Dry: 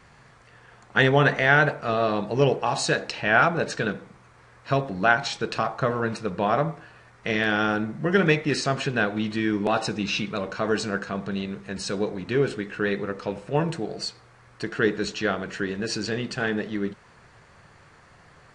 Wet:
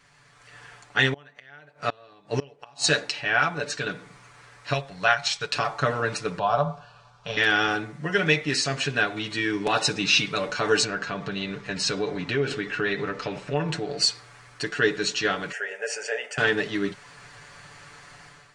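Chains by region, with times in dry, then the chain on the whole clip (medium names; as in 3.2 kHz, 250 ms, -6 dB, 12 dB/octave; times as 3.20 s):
1.10–2.90 s: treble shelf 7.5 kHz -3.5 dB + inverted gate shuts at -14 dBFS, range -30 dB
4.73–5.53 s: transient shaper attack +2 dB, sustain -4 dB + peaking EQ 290 Hz -15 dB 1 oct
6.39–7.37 s: low-pass 4.2 kHz + static phaser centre 820 Hz, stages 4
10.84–13.98 s: distance through air 84 m + compression 2.5:1, threshold -27 dBFS
15.52–16.38 s: high-pass 470 Hz 24 dB/octave + tilt shelf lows +5 dB, about 1.1 kHz + static phaser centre 1.1 kHz, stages 6
whole clip: tilt shelf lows -5.5 dB, about 1.5 kHz; comb 6.9 ms, depth 65%; level rider; trim -6 dB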